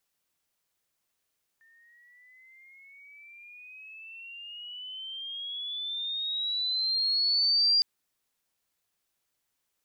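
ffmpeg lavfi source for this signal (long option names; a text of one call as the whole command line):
ffmpeg -f lavfi -i "aevalsrc='pow(10,(-19.5+38.5*(t/6.21-1))/20)*sin(2*PI*1800*6.21/(17*log(2)/12)*(exp(17*log(2)/12*t/6.21)-1))':duration=6.21:sample_rate=44100" out.wav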